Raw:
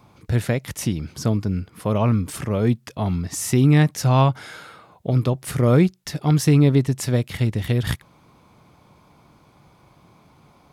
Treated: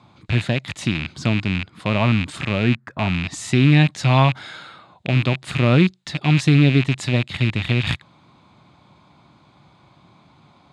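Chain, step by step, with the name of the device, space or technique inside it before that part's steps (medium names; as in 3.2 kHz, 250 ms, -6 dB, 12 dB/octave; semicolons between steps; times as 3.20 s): 2.63–3.16 s: resonant high shelf 2.3 kHz -12 dB, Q 3; car door speaker with a rattle (rattle on loud lows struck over -29 dBFS, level -16 dBFS; cabinet simulation 81–7300 Hz, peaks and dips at 460 Hz -8 dB, 3.8 kHz +7 dB, 5.7 kHz -9 dB); trim +1.5 dB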